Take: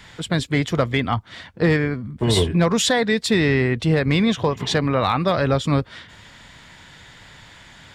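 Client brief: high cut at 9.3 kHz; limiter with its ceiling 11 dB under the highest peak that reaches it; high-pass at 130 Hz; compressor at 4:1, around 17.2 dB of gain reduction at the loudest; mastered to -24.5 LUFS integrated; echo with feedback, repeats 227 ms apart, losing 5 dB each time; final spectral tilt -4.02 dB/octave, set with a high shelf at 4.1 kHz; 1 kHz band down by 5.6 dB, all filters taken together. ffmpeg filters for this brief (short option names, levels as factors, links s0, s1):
-af "highpass=130,lowpass=9300,equalizer=f=1000:t=o:g=-8.5,highshelf=f=4100:g=8.5,acompressor=threshold=0.0158:ratio=4,alimiter=level_in=2.51:limit=0.0631:level=0:latency=1,volume=0.398,aecho=1:1:227|454|681|908|1135|1362|1589:0.562|0.315|0.176|0.0988|0.0553|0.031|0.0173,volume=5.96"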